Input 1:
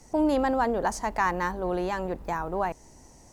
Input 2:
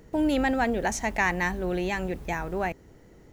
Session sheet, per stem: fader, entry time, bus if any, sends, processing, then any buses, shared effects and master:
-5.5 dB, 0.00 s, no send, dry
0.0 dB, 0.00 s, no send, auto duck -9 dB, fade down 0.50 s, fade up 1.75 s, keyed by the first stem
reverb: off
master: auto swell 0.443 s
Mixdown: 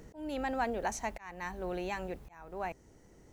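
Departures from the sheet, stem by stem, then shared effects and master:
stem 1 -5.5 dB -> -16.0 dB; stem 2: polarity flipped

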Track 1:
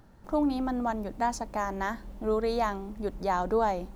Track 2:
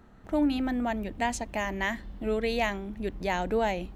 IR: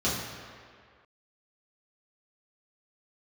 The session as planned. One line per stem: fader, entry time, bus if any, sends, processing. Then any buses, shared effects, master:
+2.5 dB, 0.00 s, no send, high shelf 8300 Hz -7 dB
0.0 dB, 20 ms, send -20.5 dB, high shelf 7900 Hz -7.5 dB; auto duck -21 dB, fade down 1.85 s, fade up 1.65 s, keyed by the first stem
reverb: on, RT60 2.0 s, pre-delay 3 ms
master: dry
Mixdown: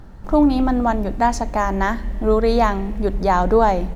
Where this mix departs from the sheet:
stem 1 +2.5 dB -> +10.5 dB; master: extra low shelf 79 Hz +10.5 dB

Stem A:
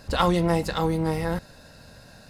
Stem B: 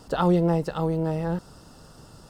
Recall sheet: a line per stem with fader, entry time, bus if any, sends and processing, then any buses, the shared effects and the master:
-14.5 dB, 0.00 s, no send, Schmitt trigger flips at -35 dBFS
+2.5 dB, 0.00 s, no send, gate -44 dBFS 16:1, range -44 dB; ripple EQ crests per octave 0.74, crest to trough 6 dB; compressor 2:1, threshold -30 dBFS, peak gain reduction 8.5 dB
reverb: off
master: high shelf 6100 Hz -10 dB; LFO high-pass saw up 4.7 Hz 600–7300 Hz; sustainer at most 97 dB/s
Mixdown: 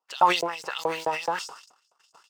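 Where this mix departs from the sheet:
stem A -14.5 dB -> -21.0 dB; stem B +2.5 dB -> +9.0 dB

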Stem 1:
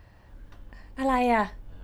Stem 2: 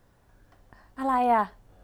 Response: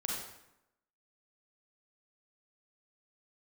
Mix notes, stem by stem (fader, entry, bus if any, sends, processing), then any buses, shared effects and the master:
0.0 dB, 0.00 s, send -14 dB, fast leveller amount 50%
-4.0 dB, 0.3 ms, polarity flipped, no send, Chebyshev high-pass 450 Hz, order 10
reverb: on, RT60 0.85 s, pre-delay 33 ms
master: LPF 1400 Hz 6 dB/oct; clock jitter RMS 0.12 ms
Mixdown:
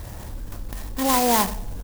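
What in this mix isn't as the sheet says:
stem 2: polarity flipped; master: missing LPF 1400 Hz 6 dB/oct

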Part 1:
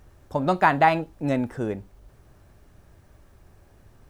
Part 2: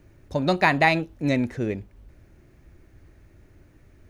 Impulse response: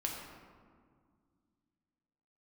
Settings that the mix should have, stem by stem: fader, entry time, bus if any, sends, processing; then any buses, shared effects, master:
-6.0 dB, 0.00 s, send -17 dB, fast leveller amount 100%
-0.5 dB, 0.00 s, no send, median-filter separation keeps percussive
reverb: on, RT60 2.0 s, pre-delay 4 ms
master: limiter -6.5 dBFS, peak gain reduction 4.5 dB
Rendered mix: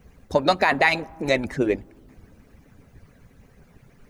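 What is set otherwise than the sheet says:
stem 1: missing fast leveller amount 100%; stem 2 -0.5 dB -> +7.5 dB

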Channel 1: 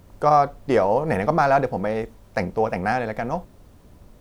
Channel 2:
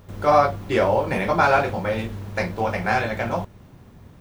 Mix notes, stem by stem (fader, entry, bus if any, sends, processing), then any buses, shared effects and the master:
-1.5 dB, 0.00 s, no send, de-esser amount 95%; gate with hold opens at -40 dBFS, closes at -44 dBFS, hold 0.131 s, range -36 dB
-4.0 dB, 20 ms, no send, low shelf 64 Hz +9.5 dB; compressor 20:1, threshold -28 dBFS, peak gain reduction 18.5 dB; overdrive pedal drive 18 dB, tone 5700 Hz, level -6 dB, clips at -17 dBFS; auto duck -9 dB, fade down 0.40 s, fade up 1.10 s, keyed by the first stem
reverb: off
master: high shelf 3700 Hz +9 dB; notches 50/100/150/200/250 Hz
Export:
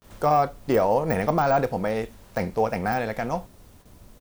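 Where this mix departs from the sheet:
stem 2 -4.0 dB -> -12.5 dB; master: missing notches 50/100/150/200/250 Hz

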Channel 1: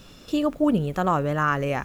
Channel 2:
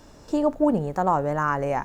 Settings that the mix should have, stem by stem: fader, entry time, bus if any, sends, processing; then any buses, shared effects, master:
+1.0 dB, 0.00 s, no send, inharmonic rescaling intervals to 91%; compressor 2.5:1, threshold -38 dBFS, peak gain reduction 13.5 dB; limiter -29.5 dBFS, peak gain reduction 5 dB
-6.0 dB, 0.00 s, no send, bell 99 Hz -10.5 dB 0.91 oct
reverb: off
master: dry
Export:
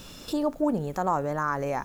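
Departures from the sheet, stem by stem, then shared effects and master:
stem 1: missing inharmonic rescaling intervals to 91%; master: extra high shelf 4500 Hz +8 dB

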